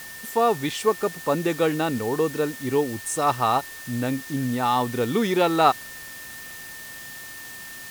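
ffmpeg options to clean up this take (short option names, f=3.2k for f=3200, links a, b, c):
-af "bandreject=f=1.8k:w=30,afwtdn=0.0089"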